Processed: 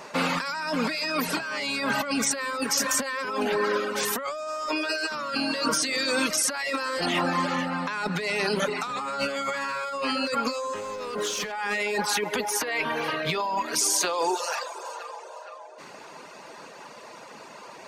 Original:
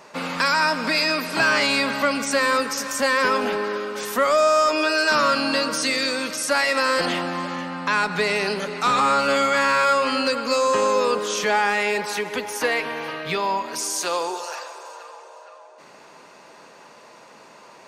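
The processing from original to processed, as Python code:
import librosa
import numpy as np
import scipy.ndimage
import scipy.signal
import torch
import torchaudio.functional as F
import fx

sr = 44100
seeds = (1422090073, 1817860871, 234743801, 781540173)

y = fx.dereverb_blind(x, sr, rt60_s=0.71)
y = fx.leveller(y, sr, passes=2, at=(10.75, 11.52))
y = fx.over_compress(y, sr, threshold_db=-28.0, ratio=-1.0)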